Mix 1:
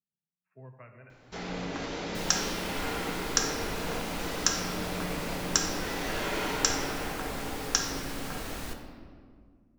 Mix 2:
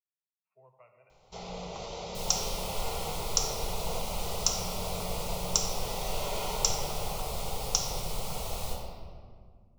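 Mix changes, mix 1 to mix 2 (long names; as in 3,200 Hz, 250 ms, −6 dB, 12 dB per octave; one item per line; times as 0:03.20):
speech: add high-pass filter 790 Hz 6 dB per octave
second sound: send +9.0 dB
master: add phaser with its sweep stopped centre 690 Hz, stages 4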